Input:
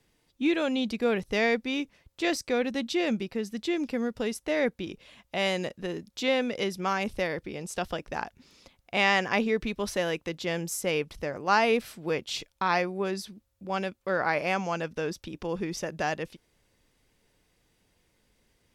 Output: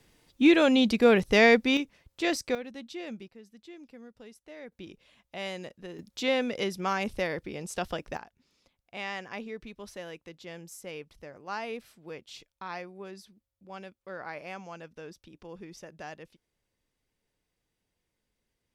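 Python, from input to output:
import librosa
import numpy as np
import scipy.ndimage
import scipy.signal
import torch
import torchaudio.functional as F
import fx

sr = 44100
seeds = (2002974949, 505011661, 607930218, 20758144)

y = fx.gain(x, sr, db=fx.steps((0.0, 6.0), (1.77, -0.5), (2.55, -12.0), (3.28, -19.0), (4.72, -9.0), (5.99, -1.0), (8.17, -13.0)))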